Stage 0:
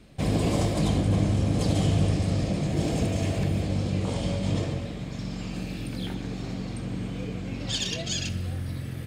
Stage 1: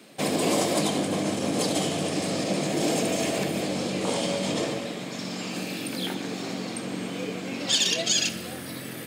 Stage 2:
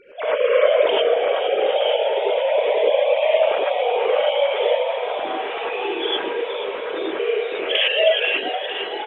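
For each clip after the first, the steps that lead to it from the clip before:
high-shelf EQ 9,100 Hz +9 dB; brickwall limiter −17.5 dBFS, peak gain reduction 5.5 dB; Bessel high-pass filter 300 Hz, order 4; level +7 dB
three sine waves on the formant tracks; echo with shifted repeats 471 ms, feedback 63%, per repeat +99 Hz, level −10 dB; reverb whose tail is shaped and stops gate 130 ms rising, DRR −6 dB

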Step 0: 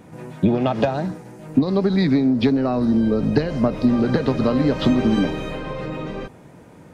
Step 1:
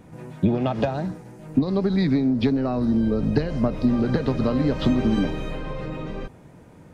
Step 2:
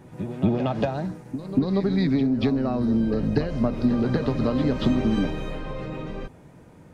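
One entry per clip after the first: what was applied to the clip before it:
low-shelf EQ 93 Hz +10 dB; level −4.5 dB
backwards echo 235 ms −10.5 dB; level −1.5 dB

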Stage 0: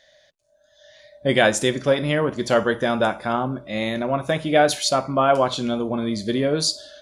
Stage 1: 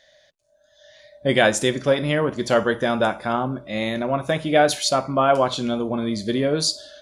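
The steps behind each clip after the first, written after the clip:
no processing that can be heard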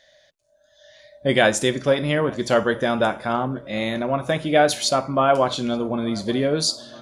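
feedback echo with a low-pass in the loop 877 ms, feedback 58%, low-pass 2,400 Hz, level −23.5 dB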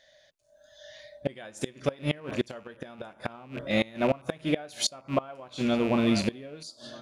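loose part that buzzes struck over −35 dBFS, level −26 dBFS
automatic gain control gain up to 8 dB
gate with flip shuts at −8 dBFS, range −24 dB
level −4.5 dB

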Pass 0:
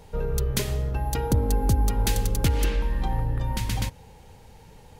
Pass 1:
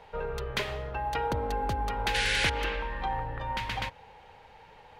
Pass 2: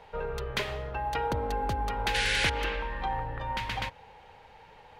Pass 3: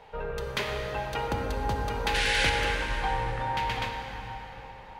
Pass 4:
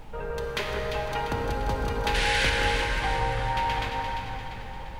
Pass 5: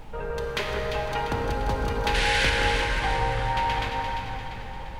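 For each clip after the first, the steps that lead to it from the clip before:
sound drawn into the spectrogram noise, 0:02.14–0:02.50, 1,400–11,000 Hz −25 dBFS; three-way crossover with the lows and the highs turned down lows −17 dB, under 550 Hz, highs −24 dB, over 3,500 Hz; level +4.5 dB
no processing that can be heard
dense smooth reverb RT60 4.7 s, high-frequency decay 0.6×, DRR 1.5 dB
background noise brown −42 dBFS; on a send: delay that swaps between a low-pass and a high-pass 173 ms, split 1,900 Hz, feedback 70%, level −4 dB
highs frequency-modulated by the lows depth 0.1 ms; level +1.5 dB

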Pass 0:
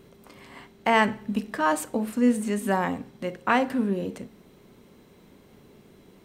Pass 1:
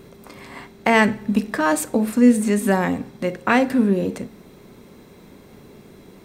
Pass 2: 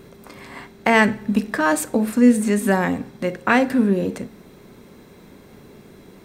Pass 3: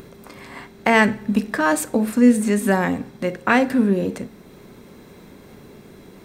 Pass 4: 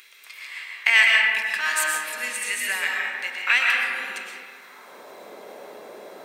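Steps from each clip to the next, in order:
dynamic equaliser 1,000 Hz, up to −7 dB, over −35 dBFS, Q 1.1; notch filter 3,000 Hz, Q 10; level +8 dB
parametric band 1,600 Hz +2.5 dB 0.41 octaves
upward compression, threshold −39 dBFS
high-pass filter sweep 2,400 Hz → 600 Hz, 0:04.40–0:04.98; comb and all-pass reverb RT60 2.7 s, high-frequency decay 0.3×, pre-delay 80 ms, DRR −2.5 dB

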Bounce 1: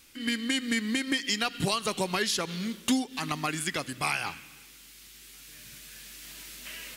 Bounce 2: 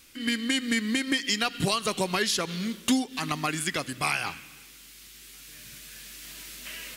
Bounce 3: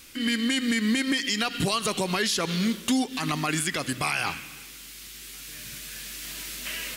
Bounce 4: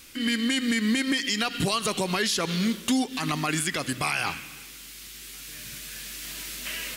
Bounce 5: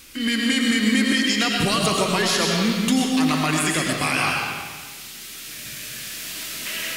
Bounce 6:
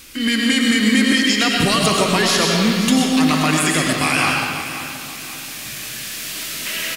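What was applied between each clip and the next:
notch filter 860 Hz, Q 19; level +2 dB
brickwall limiter −22 dBFS, peak gain reduction 7.5 dB; level +6 dB
no processing that can be heard
comb and all-pass reverb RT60 1.4 s, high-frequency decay 0.8×, pre-delay 65 ms, DRR −0.5 dB; level +3 dB
repeating echo 528 ms, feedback 44%, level −12.5 dB; level +4 dB

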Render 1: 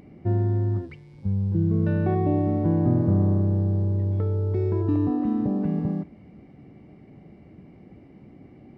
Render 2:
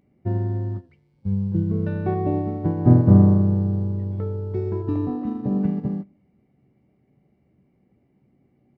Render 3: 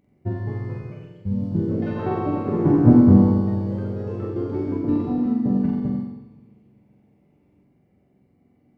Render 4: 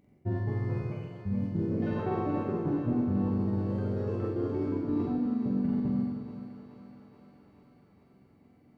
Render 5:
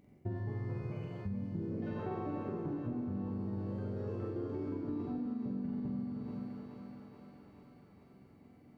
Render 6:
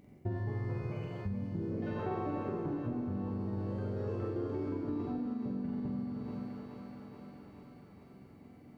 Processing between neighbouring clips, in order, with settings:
double-tracking delay 16 ms −12 dB; on a send at −14.5 dB: convolution reverb RT60 0.75 s, pre-delay 3 ms; on the sum: expander for the loud parts 2.5 to 1, over −33 dBFS; level +8.5 dB
on a send: flutter between parallel walls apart 7.7 metres, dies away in 0.8 s; on the sum: feedback delay network reverb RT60 1.7 s, low-frequency decay 1.4×, high-frequency decay 0.8×, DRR 11.5 dB; delay with pitch and tempo change per echo 253 ms, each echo +3 semitones, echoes 3, each echo −6 dB; level −1 dB
reversed playback; downward compressor, threshold −27 dBFS, peak gain reduction 18.5 dB; reversed playback; feedback echo with a high-pass in the loop 428 ms, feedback 74%, high-pass 380 Hz, level −9 dB
downward compressor 5 to 1, threshold −37 dBFS, peak gain reduction 12 dB; level +1 dB
dynamic equaliser 190 Hz, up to −4 dB, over −50 dBFS, Q 0.78; level +4.5 dB

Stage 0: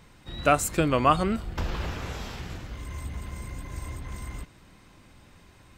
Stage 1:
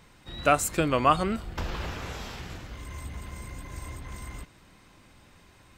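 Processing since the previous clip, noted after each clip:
low-shelf EQ 340 Hz −3.5 dB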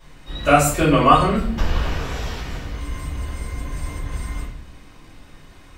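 rectangular room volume 59 cubic metres, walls mixed, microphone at 2.8 metres
level −4 dB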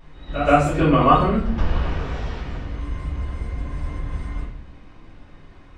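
head-to-tape spacing loss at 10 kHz 22 dB
on a send: backwards echo 126 ms −9.5 dB

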